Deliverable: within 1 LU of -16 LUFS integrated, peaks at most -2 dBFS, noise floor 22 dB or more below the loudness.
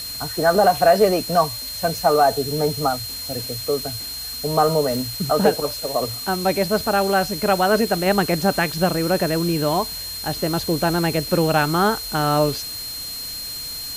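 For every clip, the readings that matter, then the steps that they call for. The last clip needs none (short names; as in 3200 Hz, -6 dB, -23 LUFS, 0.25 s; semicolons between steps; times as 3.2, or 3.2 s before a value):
steady tone 4200 Hz; tone level -30 dBFS; noise floor -31 dBFS; noise floor target -43 dBFS; loudness -20.5 LUFS; peak -4.0 dBFS; loudness target -16.0 LUFS
-> notch 4200 Hz, Q 30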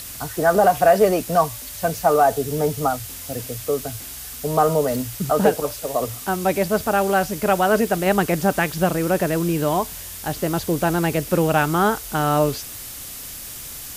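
steady tone none; noise floor -35 dBFS; noise floor target -43 dBFS
-> noise print and reduce 8 dB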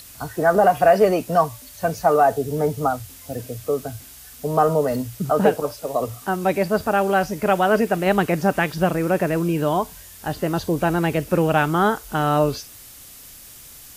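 noise floor -43 dBFS; loudness -20.5 LUFS; peak -4.5 dBFS; loudness target -16.0 LUFS
-> gain +4.5 dB; limiter -2 dBFS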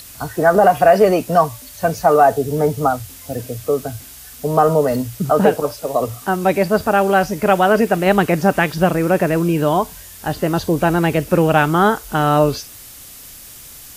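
loudness -16.5 LUFS; peak -2.0 dBFS; noise floor -39 dBFS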